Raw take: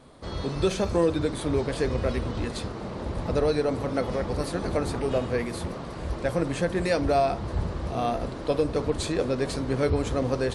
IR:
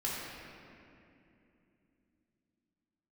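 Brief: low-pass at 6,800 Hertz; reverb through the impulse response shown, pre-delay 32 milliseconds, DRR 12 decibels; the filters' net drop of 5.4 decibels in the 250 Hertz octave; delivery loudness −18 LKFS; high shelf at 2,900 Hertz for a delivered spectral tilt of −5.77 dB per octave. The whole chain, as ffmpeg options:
-filter_complex "[0:a]lowpass=6800,equalizer=frequency=250:width_type=o:gain=-7.5,highshelf=frequency=2900:gain=-5,asplit=2[link_01][link_02];[1:a]atrim=start_sample=2205,adelay=32[link_03];[link_02][link_03]afir=irnorm=-1:irlink=0,volume=-17dB[link_04];[link_01][link_04]amix=inputs=2:normalize=0,volume=11.5dB"

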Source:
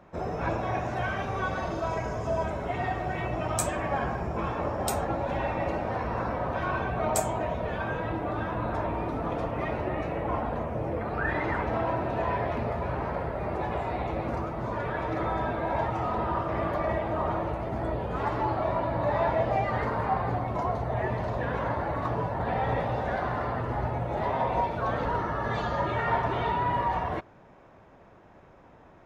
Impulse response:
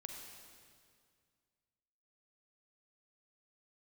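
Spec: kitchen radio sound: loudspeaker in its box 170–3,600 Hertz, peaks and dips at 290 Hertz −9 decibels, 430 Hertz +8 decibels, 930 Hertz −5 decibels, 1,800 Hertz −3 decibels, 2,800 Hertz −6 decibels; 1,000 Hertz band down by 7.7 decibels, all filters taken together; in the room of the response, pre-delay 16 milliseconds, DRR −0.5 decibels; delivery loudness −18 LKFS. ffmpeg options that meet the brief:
-filter_complex "[0:a]equalizer=frequency=1000:width_type=o:gain=-7.5,asplit=2[link_01][link_02];[1:a]atrim=start_sample=2205,adelay=16[link_03];[link_02][link_03]afir=irnorm=-1:irlink=0,volume=4dB[link_04];[link_01][link_04]amix=inputs=2:normalize=0,highpass=170,equalizer=frequency=290:width_type=q:width=4:gain=-9,equalizer=frequency=430:width_type=q:width=4:gain=8,equalizer=frequency=930:width_type=q:width=4:gain=-5,equalizer=frequency=1800:width_type=q:width=4:gain=-3,equalizer=frequency=2800:width_type=q:width=4:gain=-6,lowpass=frequency=3600:width=0.5412,lowpass=frequency=3600:width=1.3066,volume=12dB"

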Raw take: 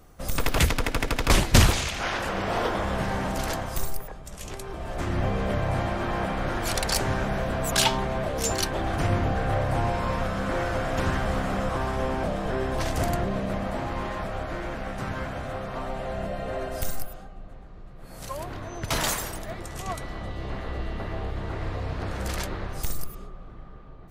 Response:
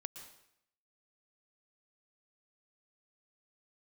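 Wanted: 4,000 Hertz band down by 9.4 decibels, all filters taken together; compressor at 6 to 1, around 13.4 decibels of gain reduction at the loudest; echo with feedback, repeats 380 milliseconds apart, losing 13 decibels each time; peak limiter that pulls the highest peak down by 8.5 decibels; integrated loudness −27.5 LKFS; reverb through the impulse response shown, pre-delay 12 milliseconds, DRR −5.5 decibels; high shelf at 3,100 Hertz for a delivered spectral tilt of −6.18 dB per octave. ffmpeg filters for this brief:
-filter_complex "[0:a]highshelf=frequency=3100:gain=-6.5,equalizer=frequency=4000:width_type=o:gain=-7.5,acompressor=threshold=-27dB:ratio=6,alimiter=level_in=2dB:limit=-24dB:level=0:latency=1,volume=-2dB,aecho=1:1:380|760|1140:0.224|0.0493|0.0108,asplit=2[link_01][link_02];[1:a]atrim=start_sample=2205,adelay=12[link_03];[link_02][link_03]afir=irnorm=-1:irlink=0,volume=8.5dB[link_04];[link_01][link_04]amix=inputs=2:normalize=0,volume=2dB"

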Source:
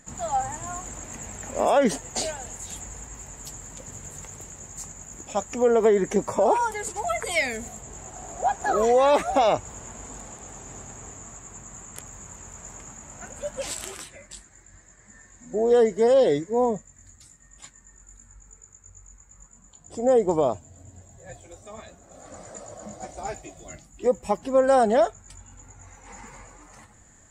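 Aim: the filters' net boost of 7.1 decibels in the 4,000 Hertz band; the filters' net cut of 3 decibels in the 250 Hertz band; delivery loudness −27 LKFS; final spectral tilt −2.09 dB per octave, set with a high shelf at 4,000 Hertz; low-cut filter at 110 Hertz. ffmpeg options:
ffmpeg -i in.wav -af "highpass=110,equalizer=frequency=250:width_type=o:gain=-3.5,highshelf=frequency=4000:gain=6,equalizer=frequency=4000:width_type=o:gain=5.5,volume=-1.5dB" out.wav

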